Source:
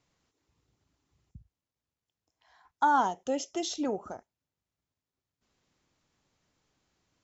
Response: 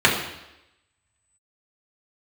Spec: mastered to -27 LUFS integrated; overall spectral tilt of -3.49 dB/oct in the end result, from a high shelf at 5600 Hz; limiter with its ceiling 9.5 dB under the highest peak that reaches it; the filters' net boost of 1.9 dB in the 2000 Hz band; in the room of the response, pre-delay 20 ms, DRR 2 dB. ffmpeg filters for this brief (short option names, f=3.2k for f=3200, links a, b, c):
-filter_complex "[0:a]equalizer=f=2k:t=o:g=4,highshelf=f=5.6k:g=-6.5,alimiter=limit=-23dB:level=0:latency=1,asplit=2[a][b];[1:a]atrim=start_sample=2205,adelay=20[c];[b][c]afir=irnorm=-1:irlink=0,volume=-24dB[d];[a][d]amix=inputs=2:normalize=0,volume=5.5dB"